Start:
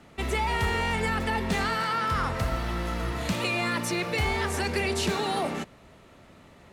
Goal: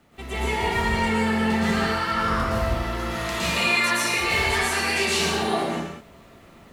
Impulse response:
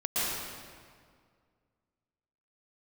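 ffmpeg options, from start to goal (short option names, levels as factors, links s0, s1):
-filter_complex "[0:a]asettb=1/sr,asplit=3[s0][s1][s2];[s0]atrim=end=2.984[s3];[s1]atrim=start=2.98:end=5.14,asetpts=PTS-STARTPTS,afade=t=in:d=0.004:c=qsin,afade=t=out:st=2.156:d=0.004:c=qsin,tiltshelf=f=680:g=-5.5[s4];[s2]atrim=start=5.136[s5];[s3][s4]acrossfade=d=0.004:c1=hsin:c2=qsin[s6];[s6][s5]acrossfade=d=0.004:c1=qsin:c2=hsin,acrusher=bits=10:mix=0:aa=0.000001[s7];[1:a]atrim=start_sample=2205,afade=t=out:st=0.43:d=0.01,atrim=end_sample=19404[s8];[s7][s8]afir=irnorm=-1:irlink=0,volume=0.531"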